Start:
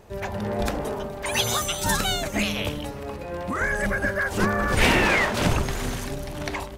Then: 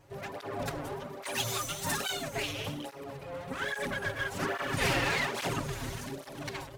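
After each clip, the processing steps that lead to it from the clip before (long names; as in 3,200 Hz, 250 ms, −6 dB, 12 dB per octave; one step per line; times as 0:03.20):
lower of the sound and its delayed copy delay 7.3 ms
through-zero flanger with one copy inverted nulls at 1.2 Hz, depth 5.2 ms
level −4.5 dB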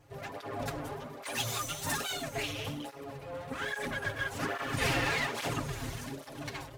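notch comb filter 190 Hz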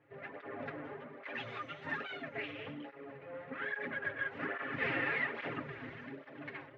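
loudspeaker in its box 200–2,500 Hz, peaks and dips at 740 Hz −6 dB, 1,000 Hz −5 dB, 1,900 Hz +5 dB
level −3.5 dB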